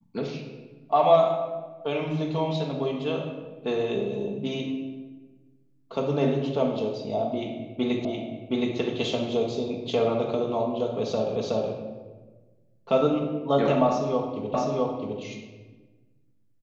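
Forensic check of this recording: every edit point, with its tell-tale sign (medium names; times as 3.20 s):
8.05 s: repeat of the last 0.72 s
11.36 s: repeat of the last 0.37 s
14.54 s: repeat of the last 0.66 s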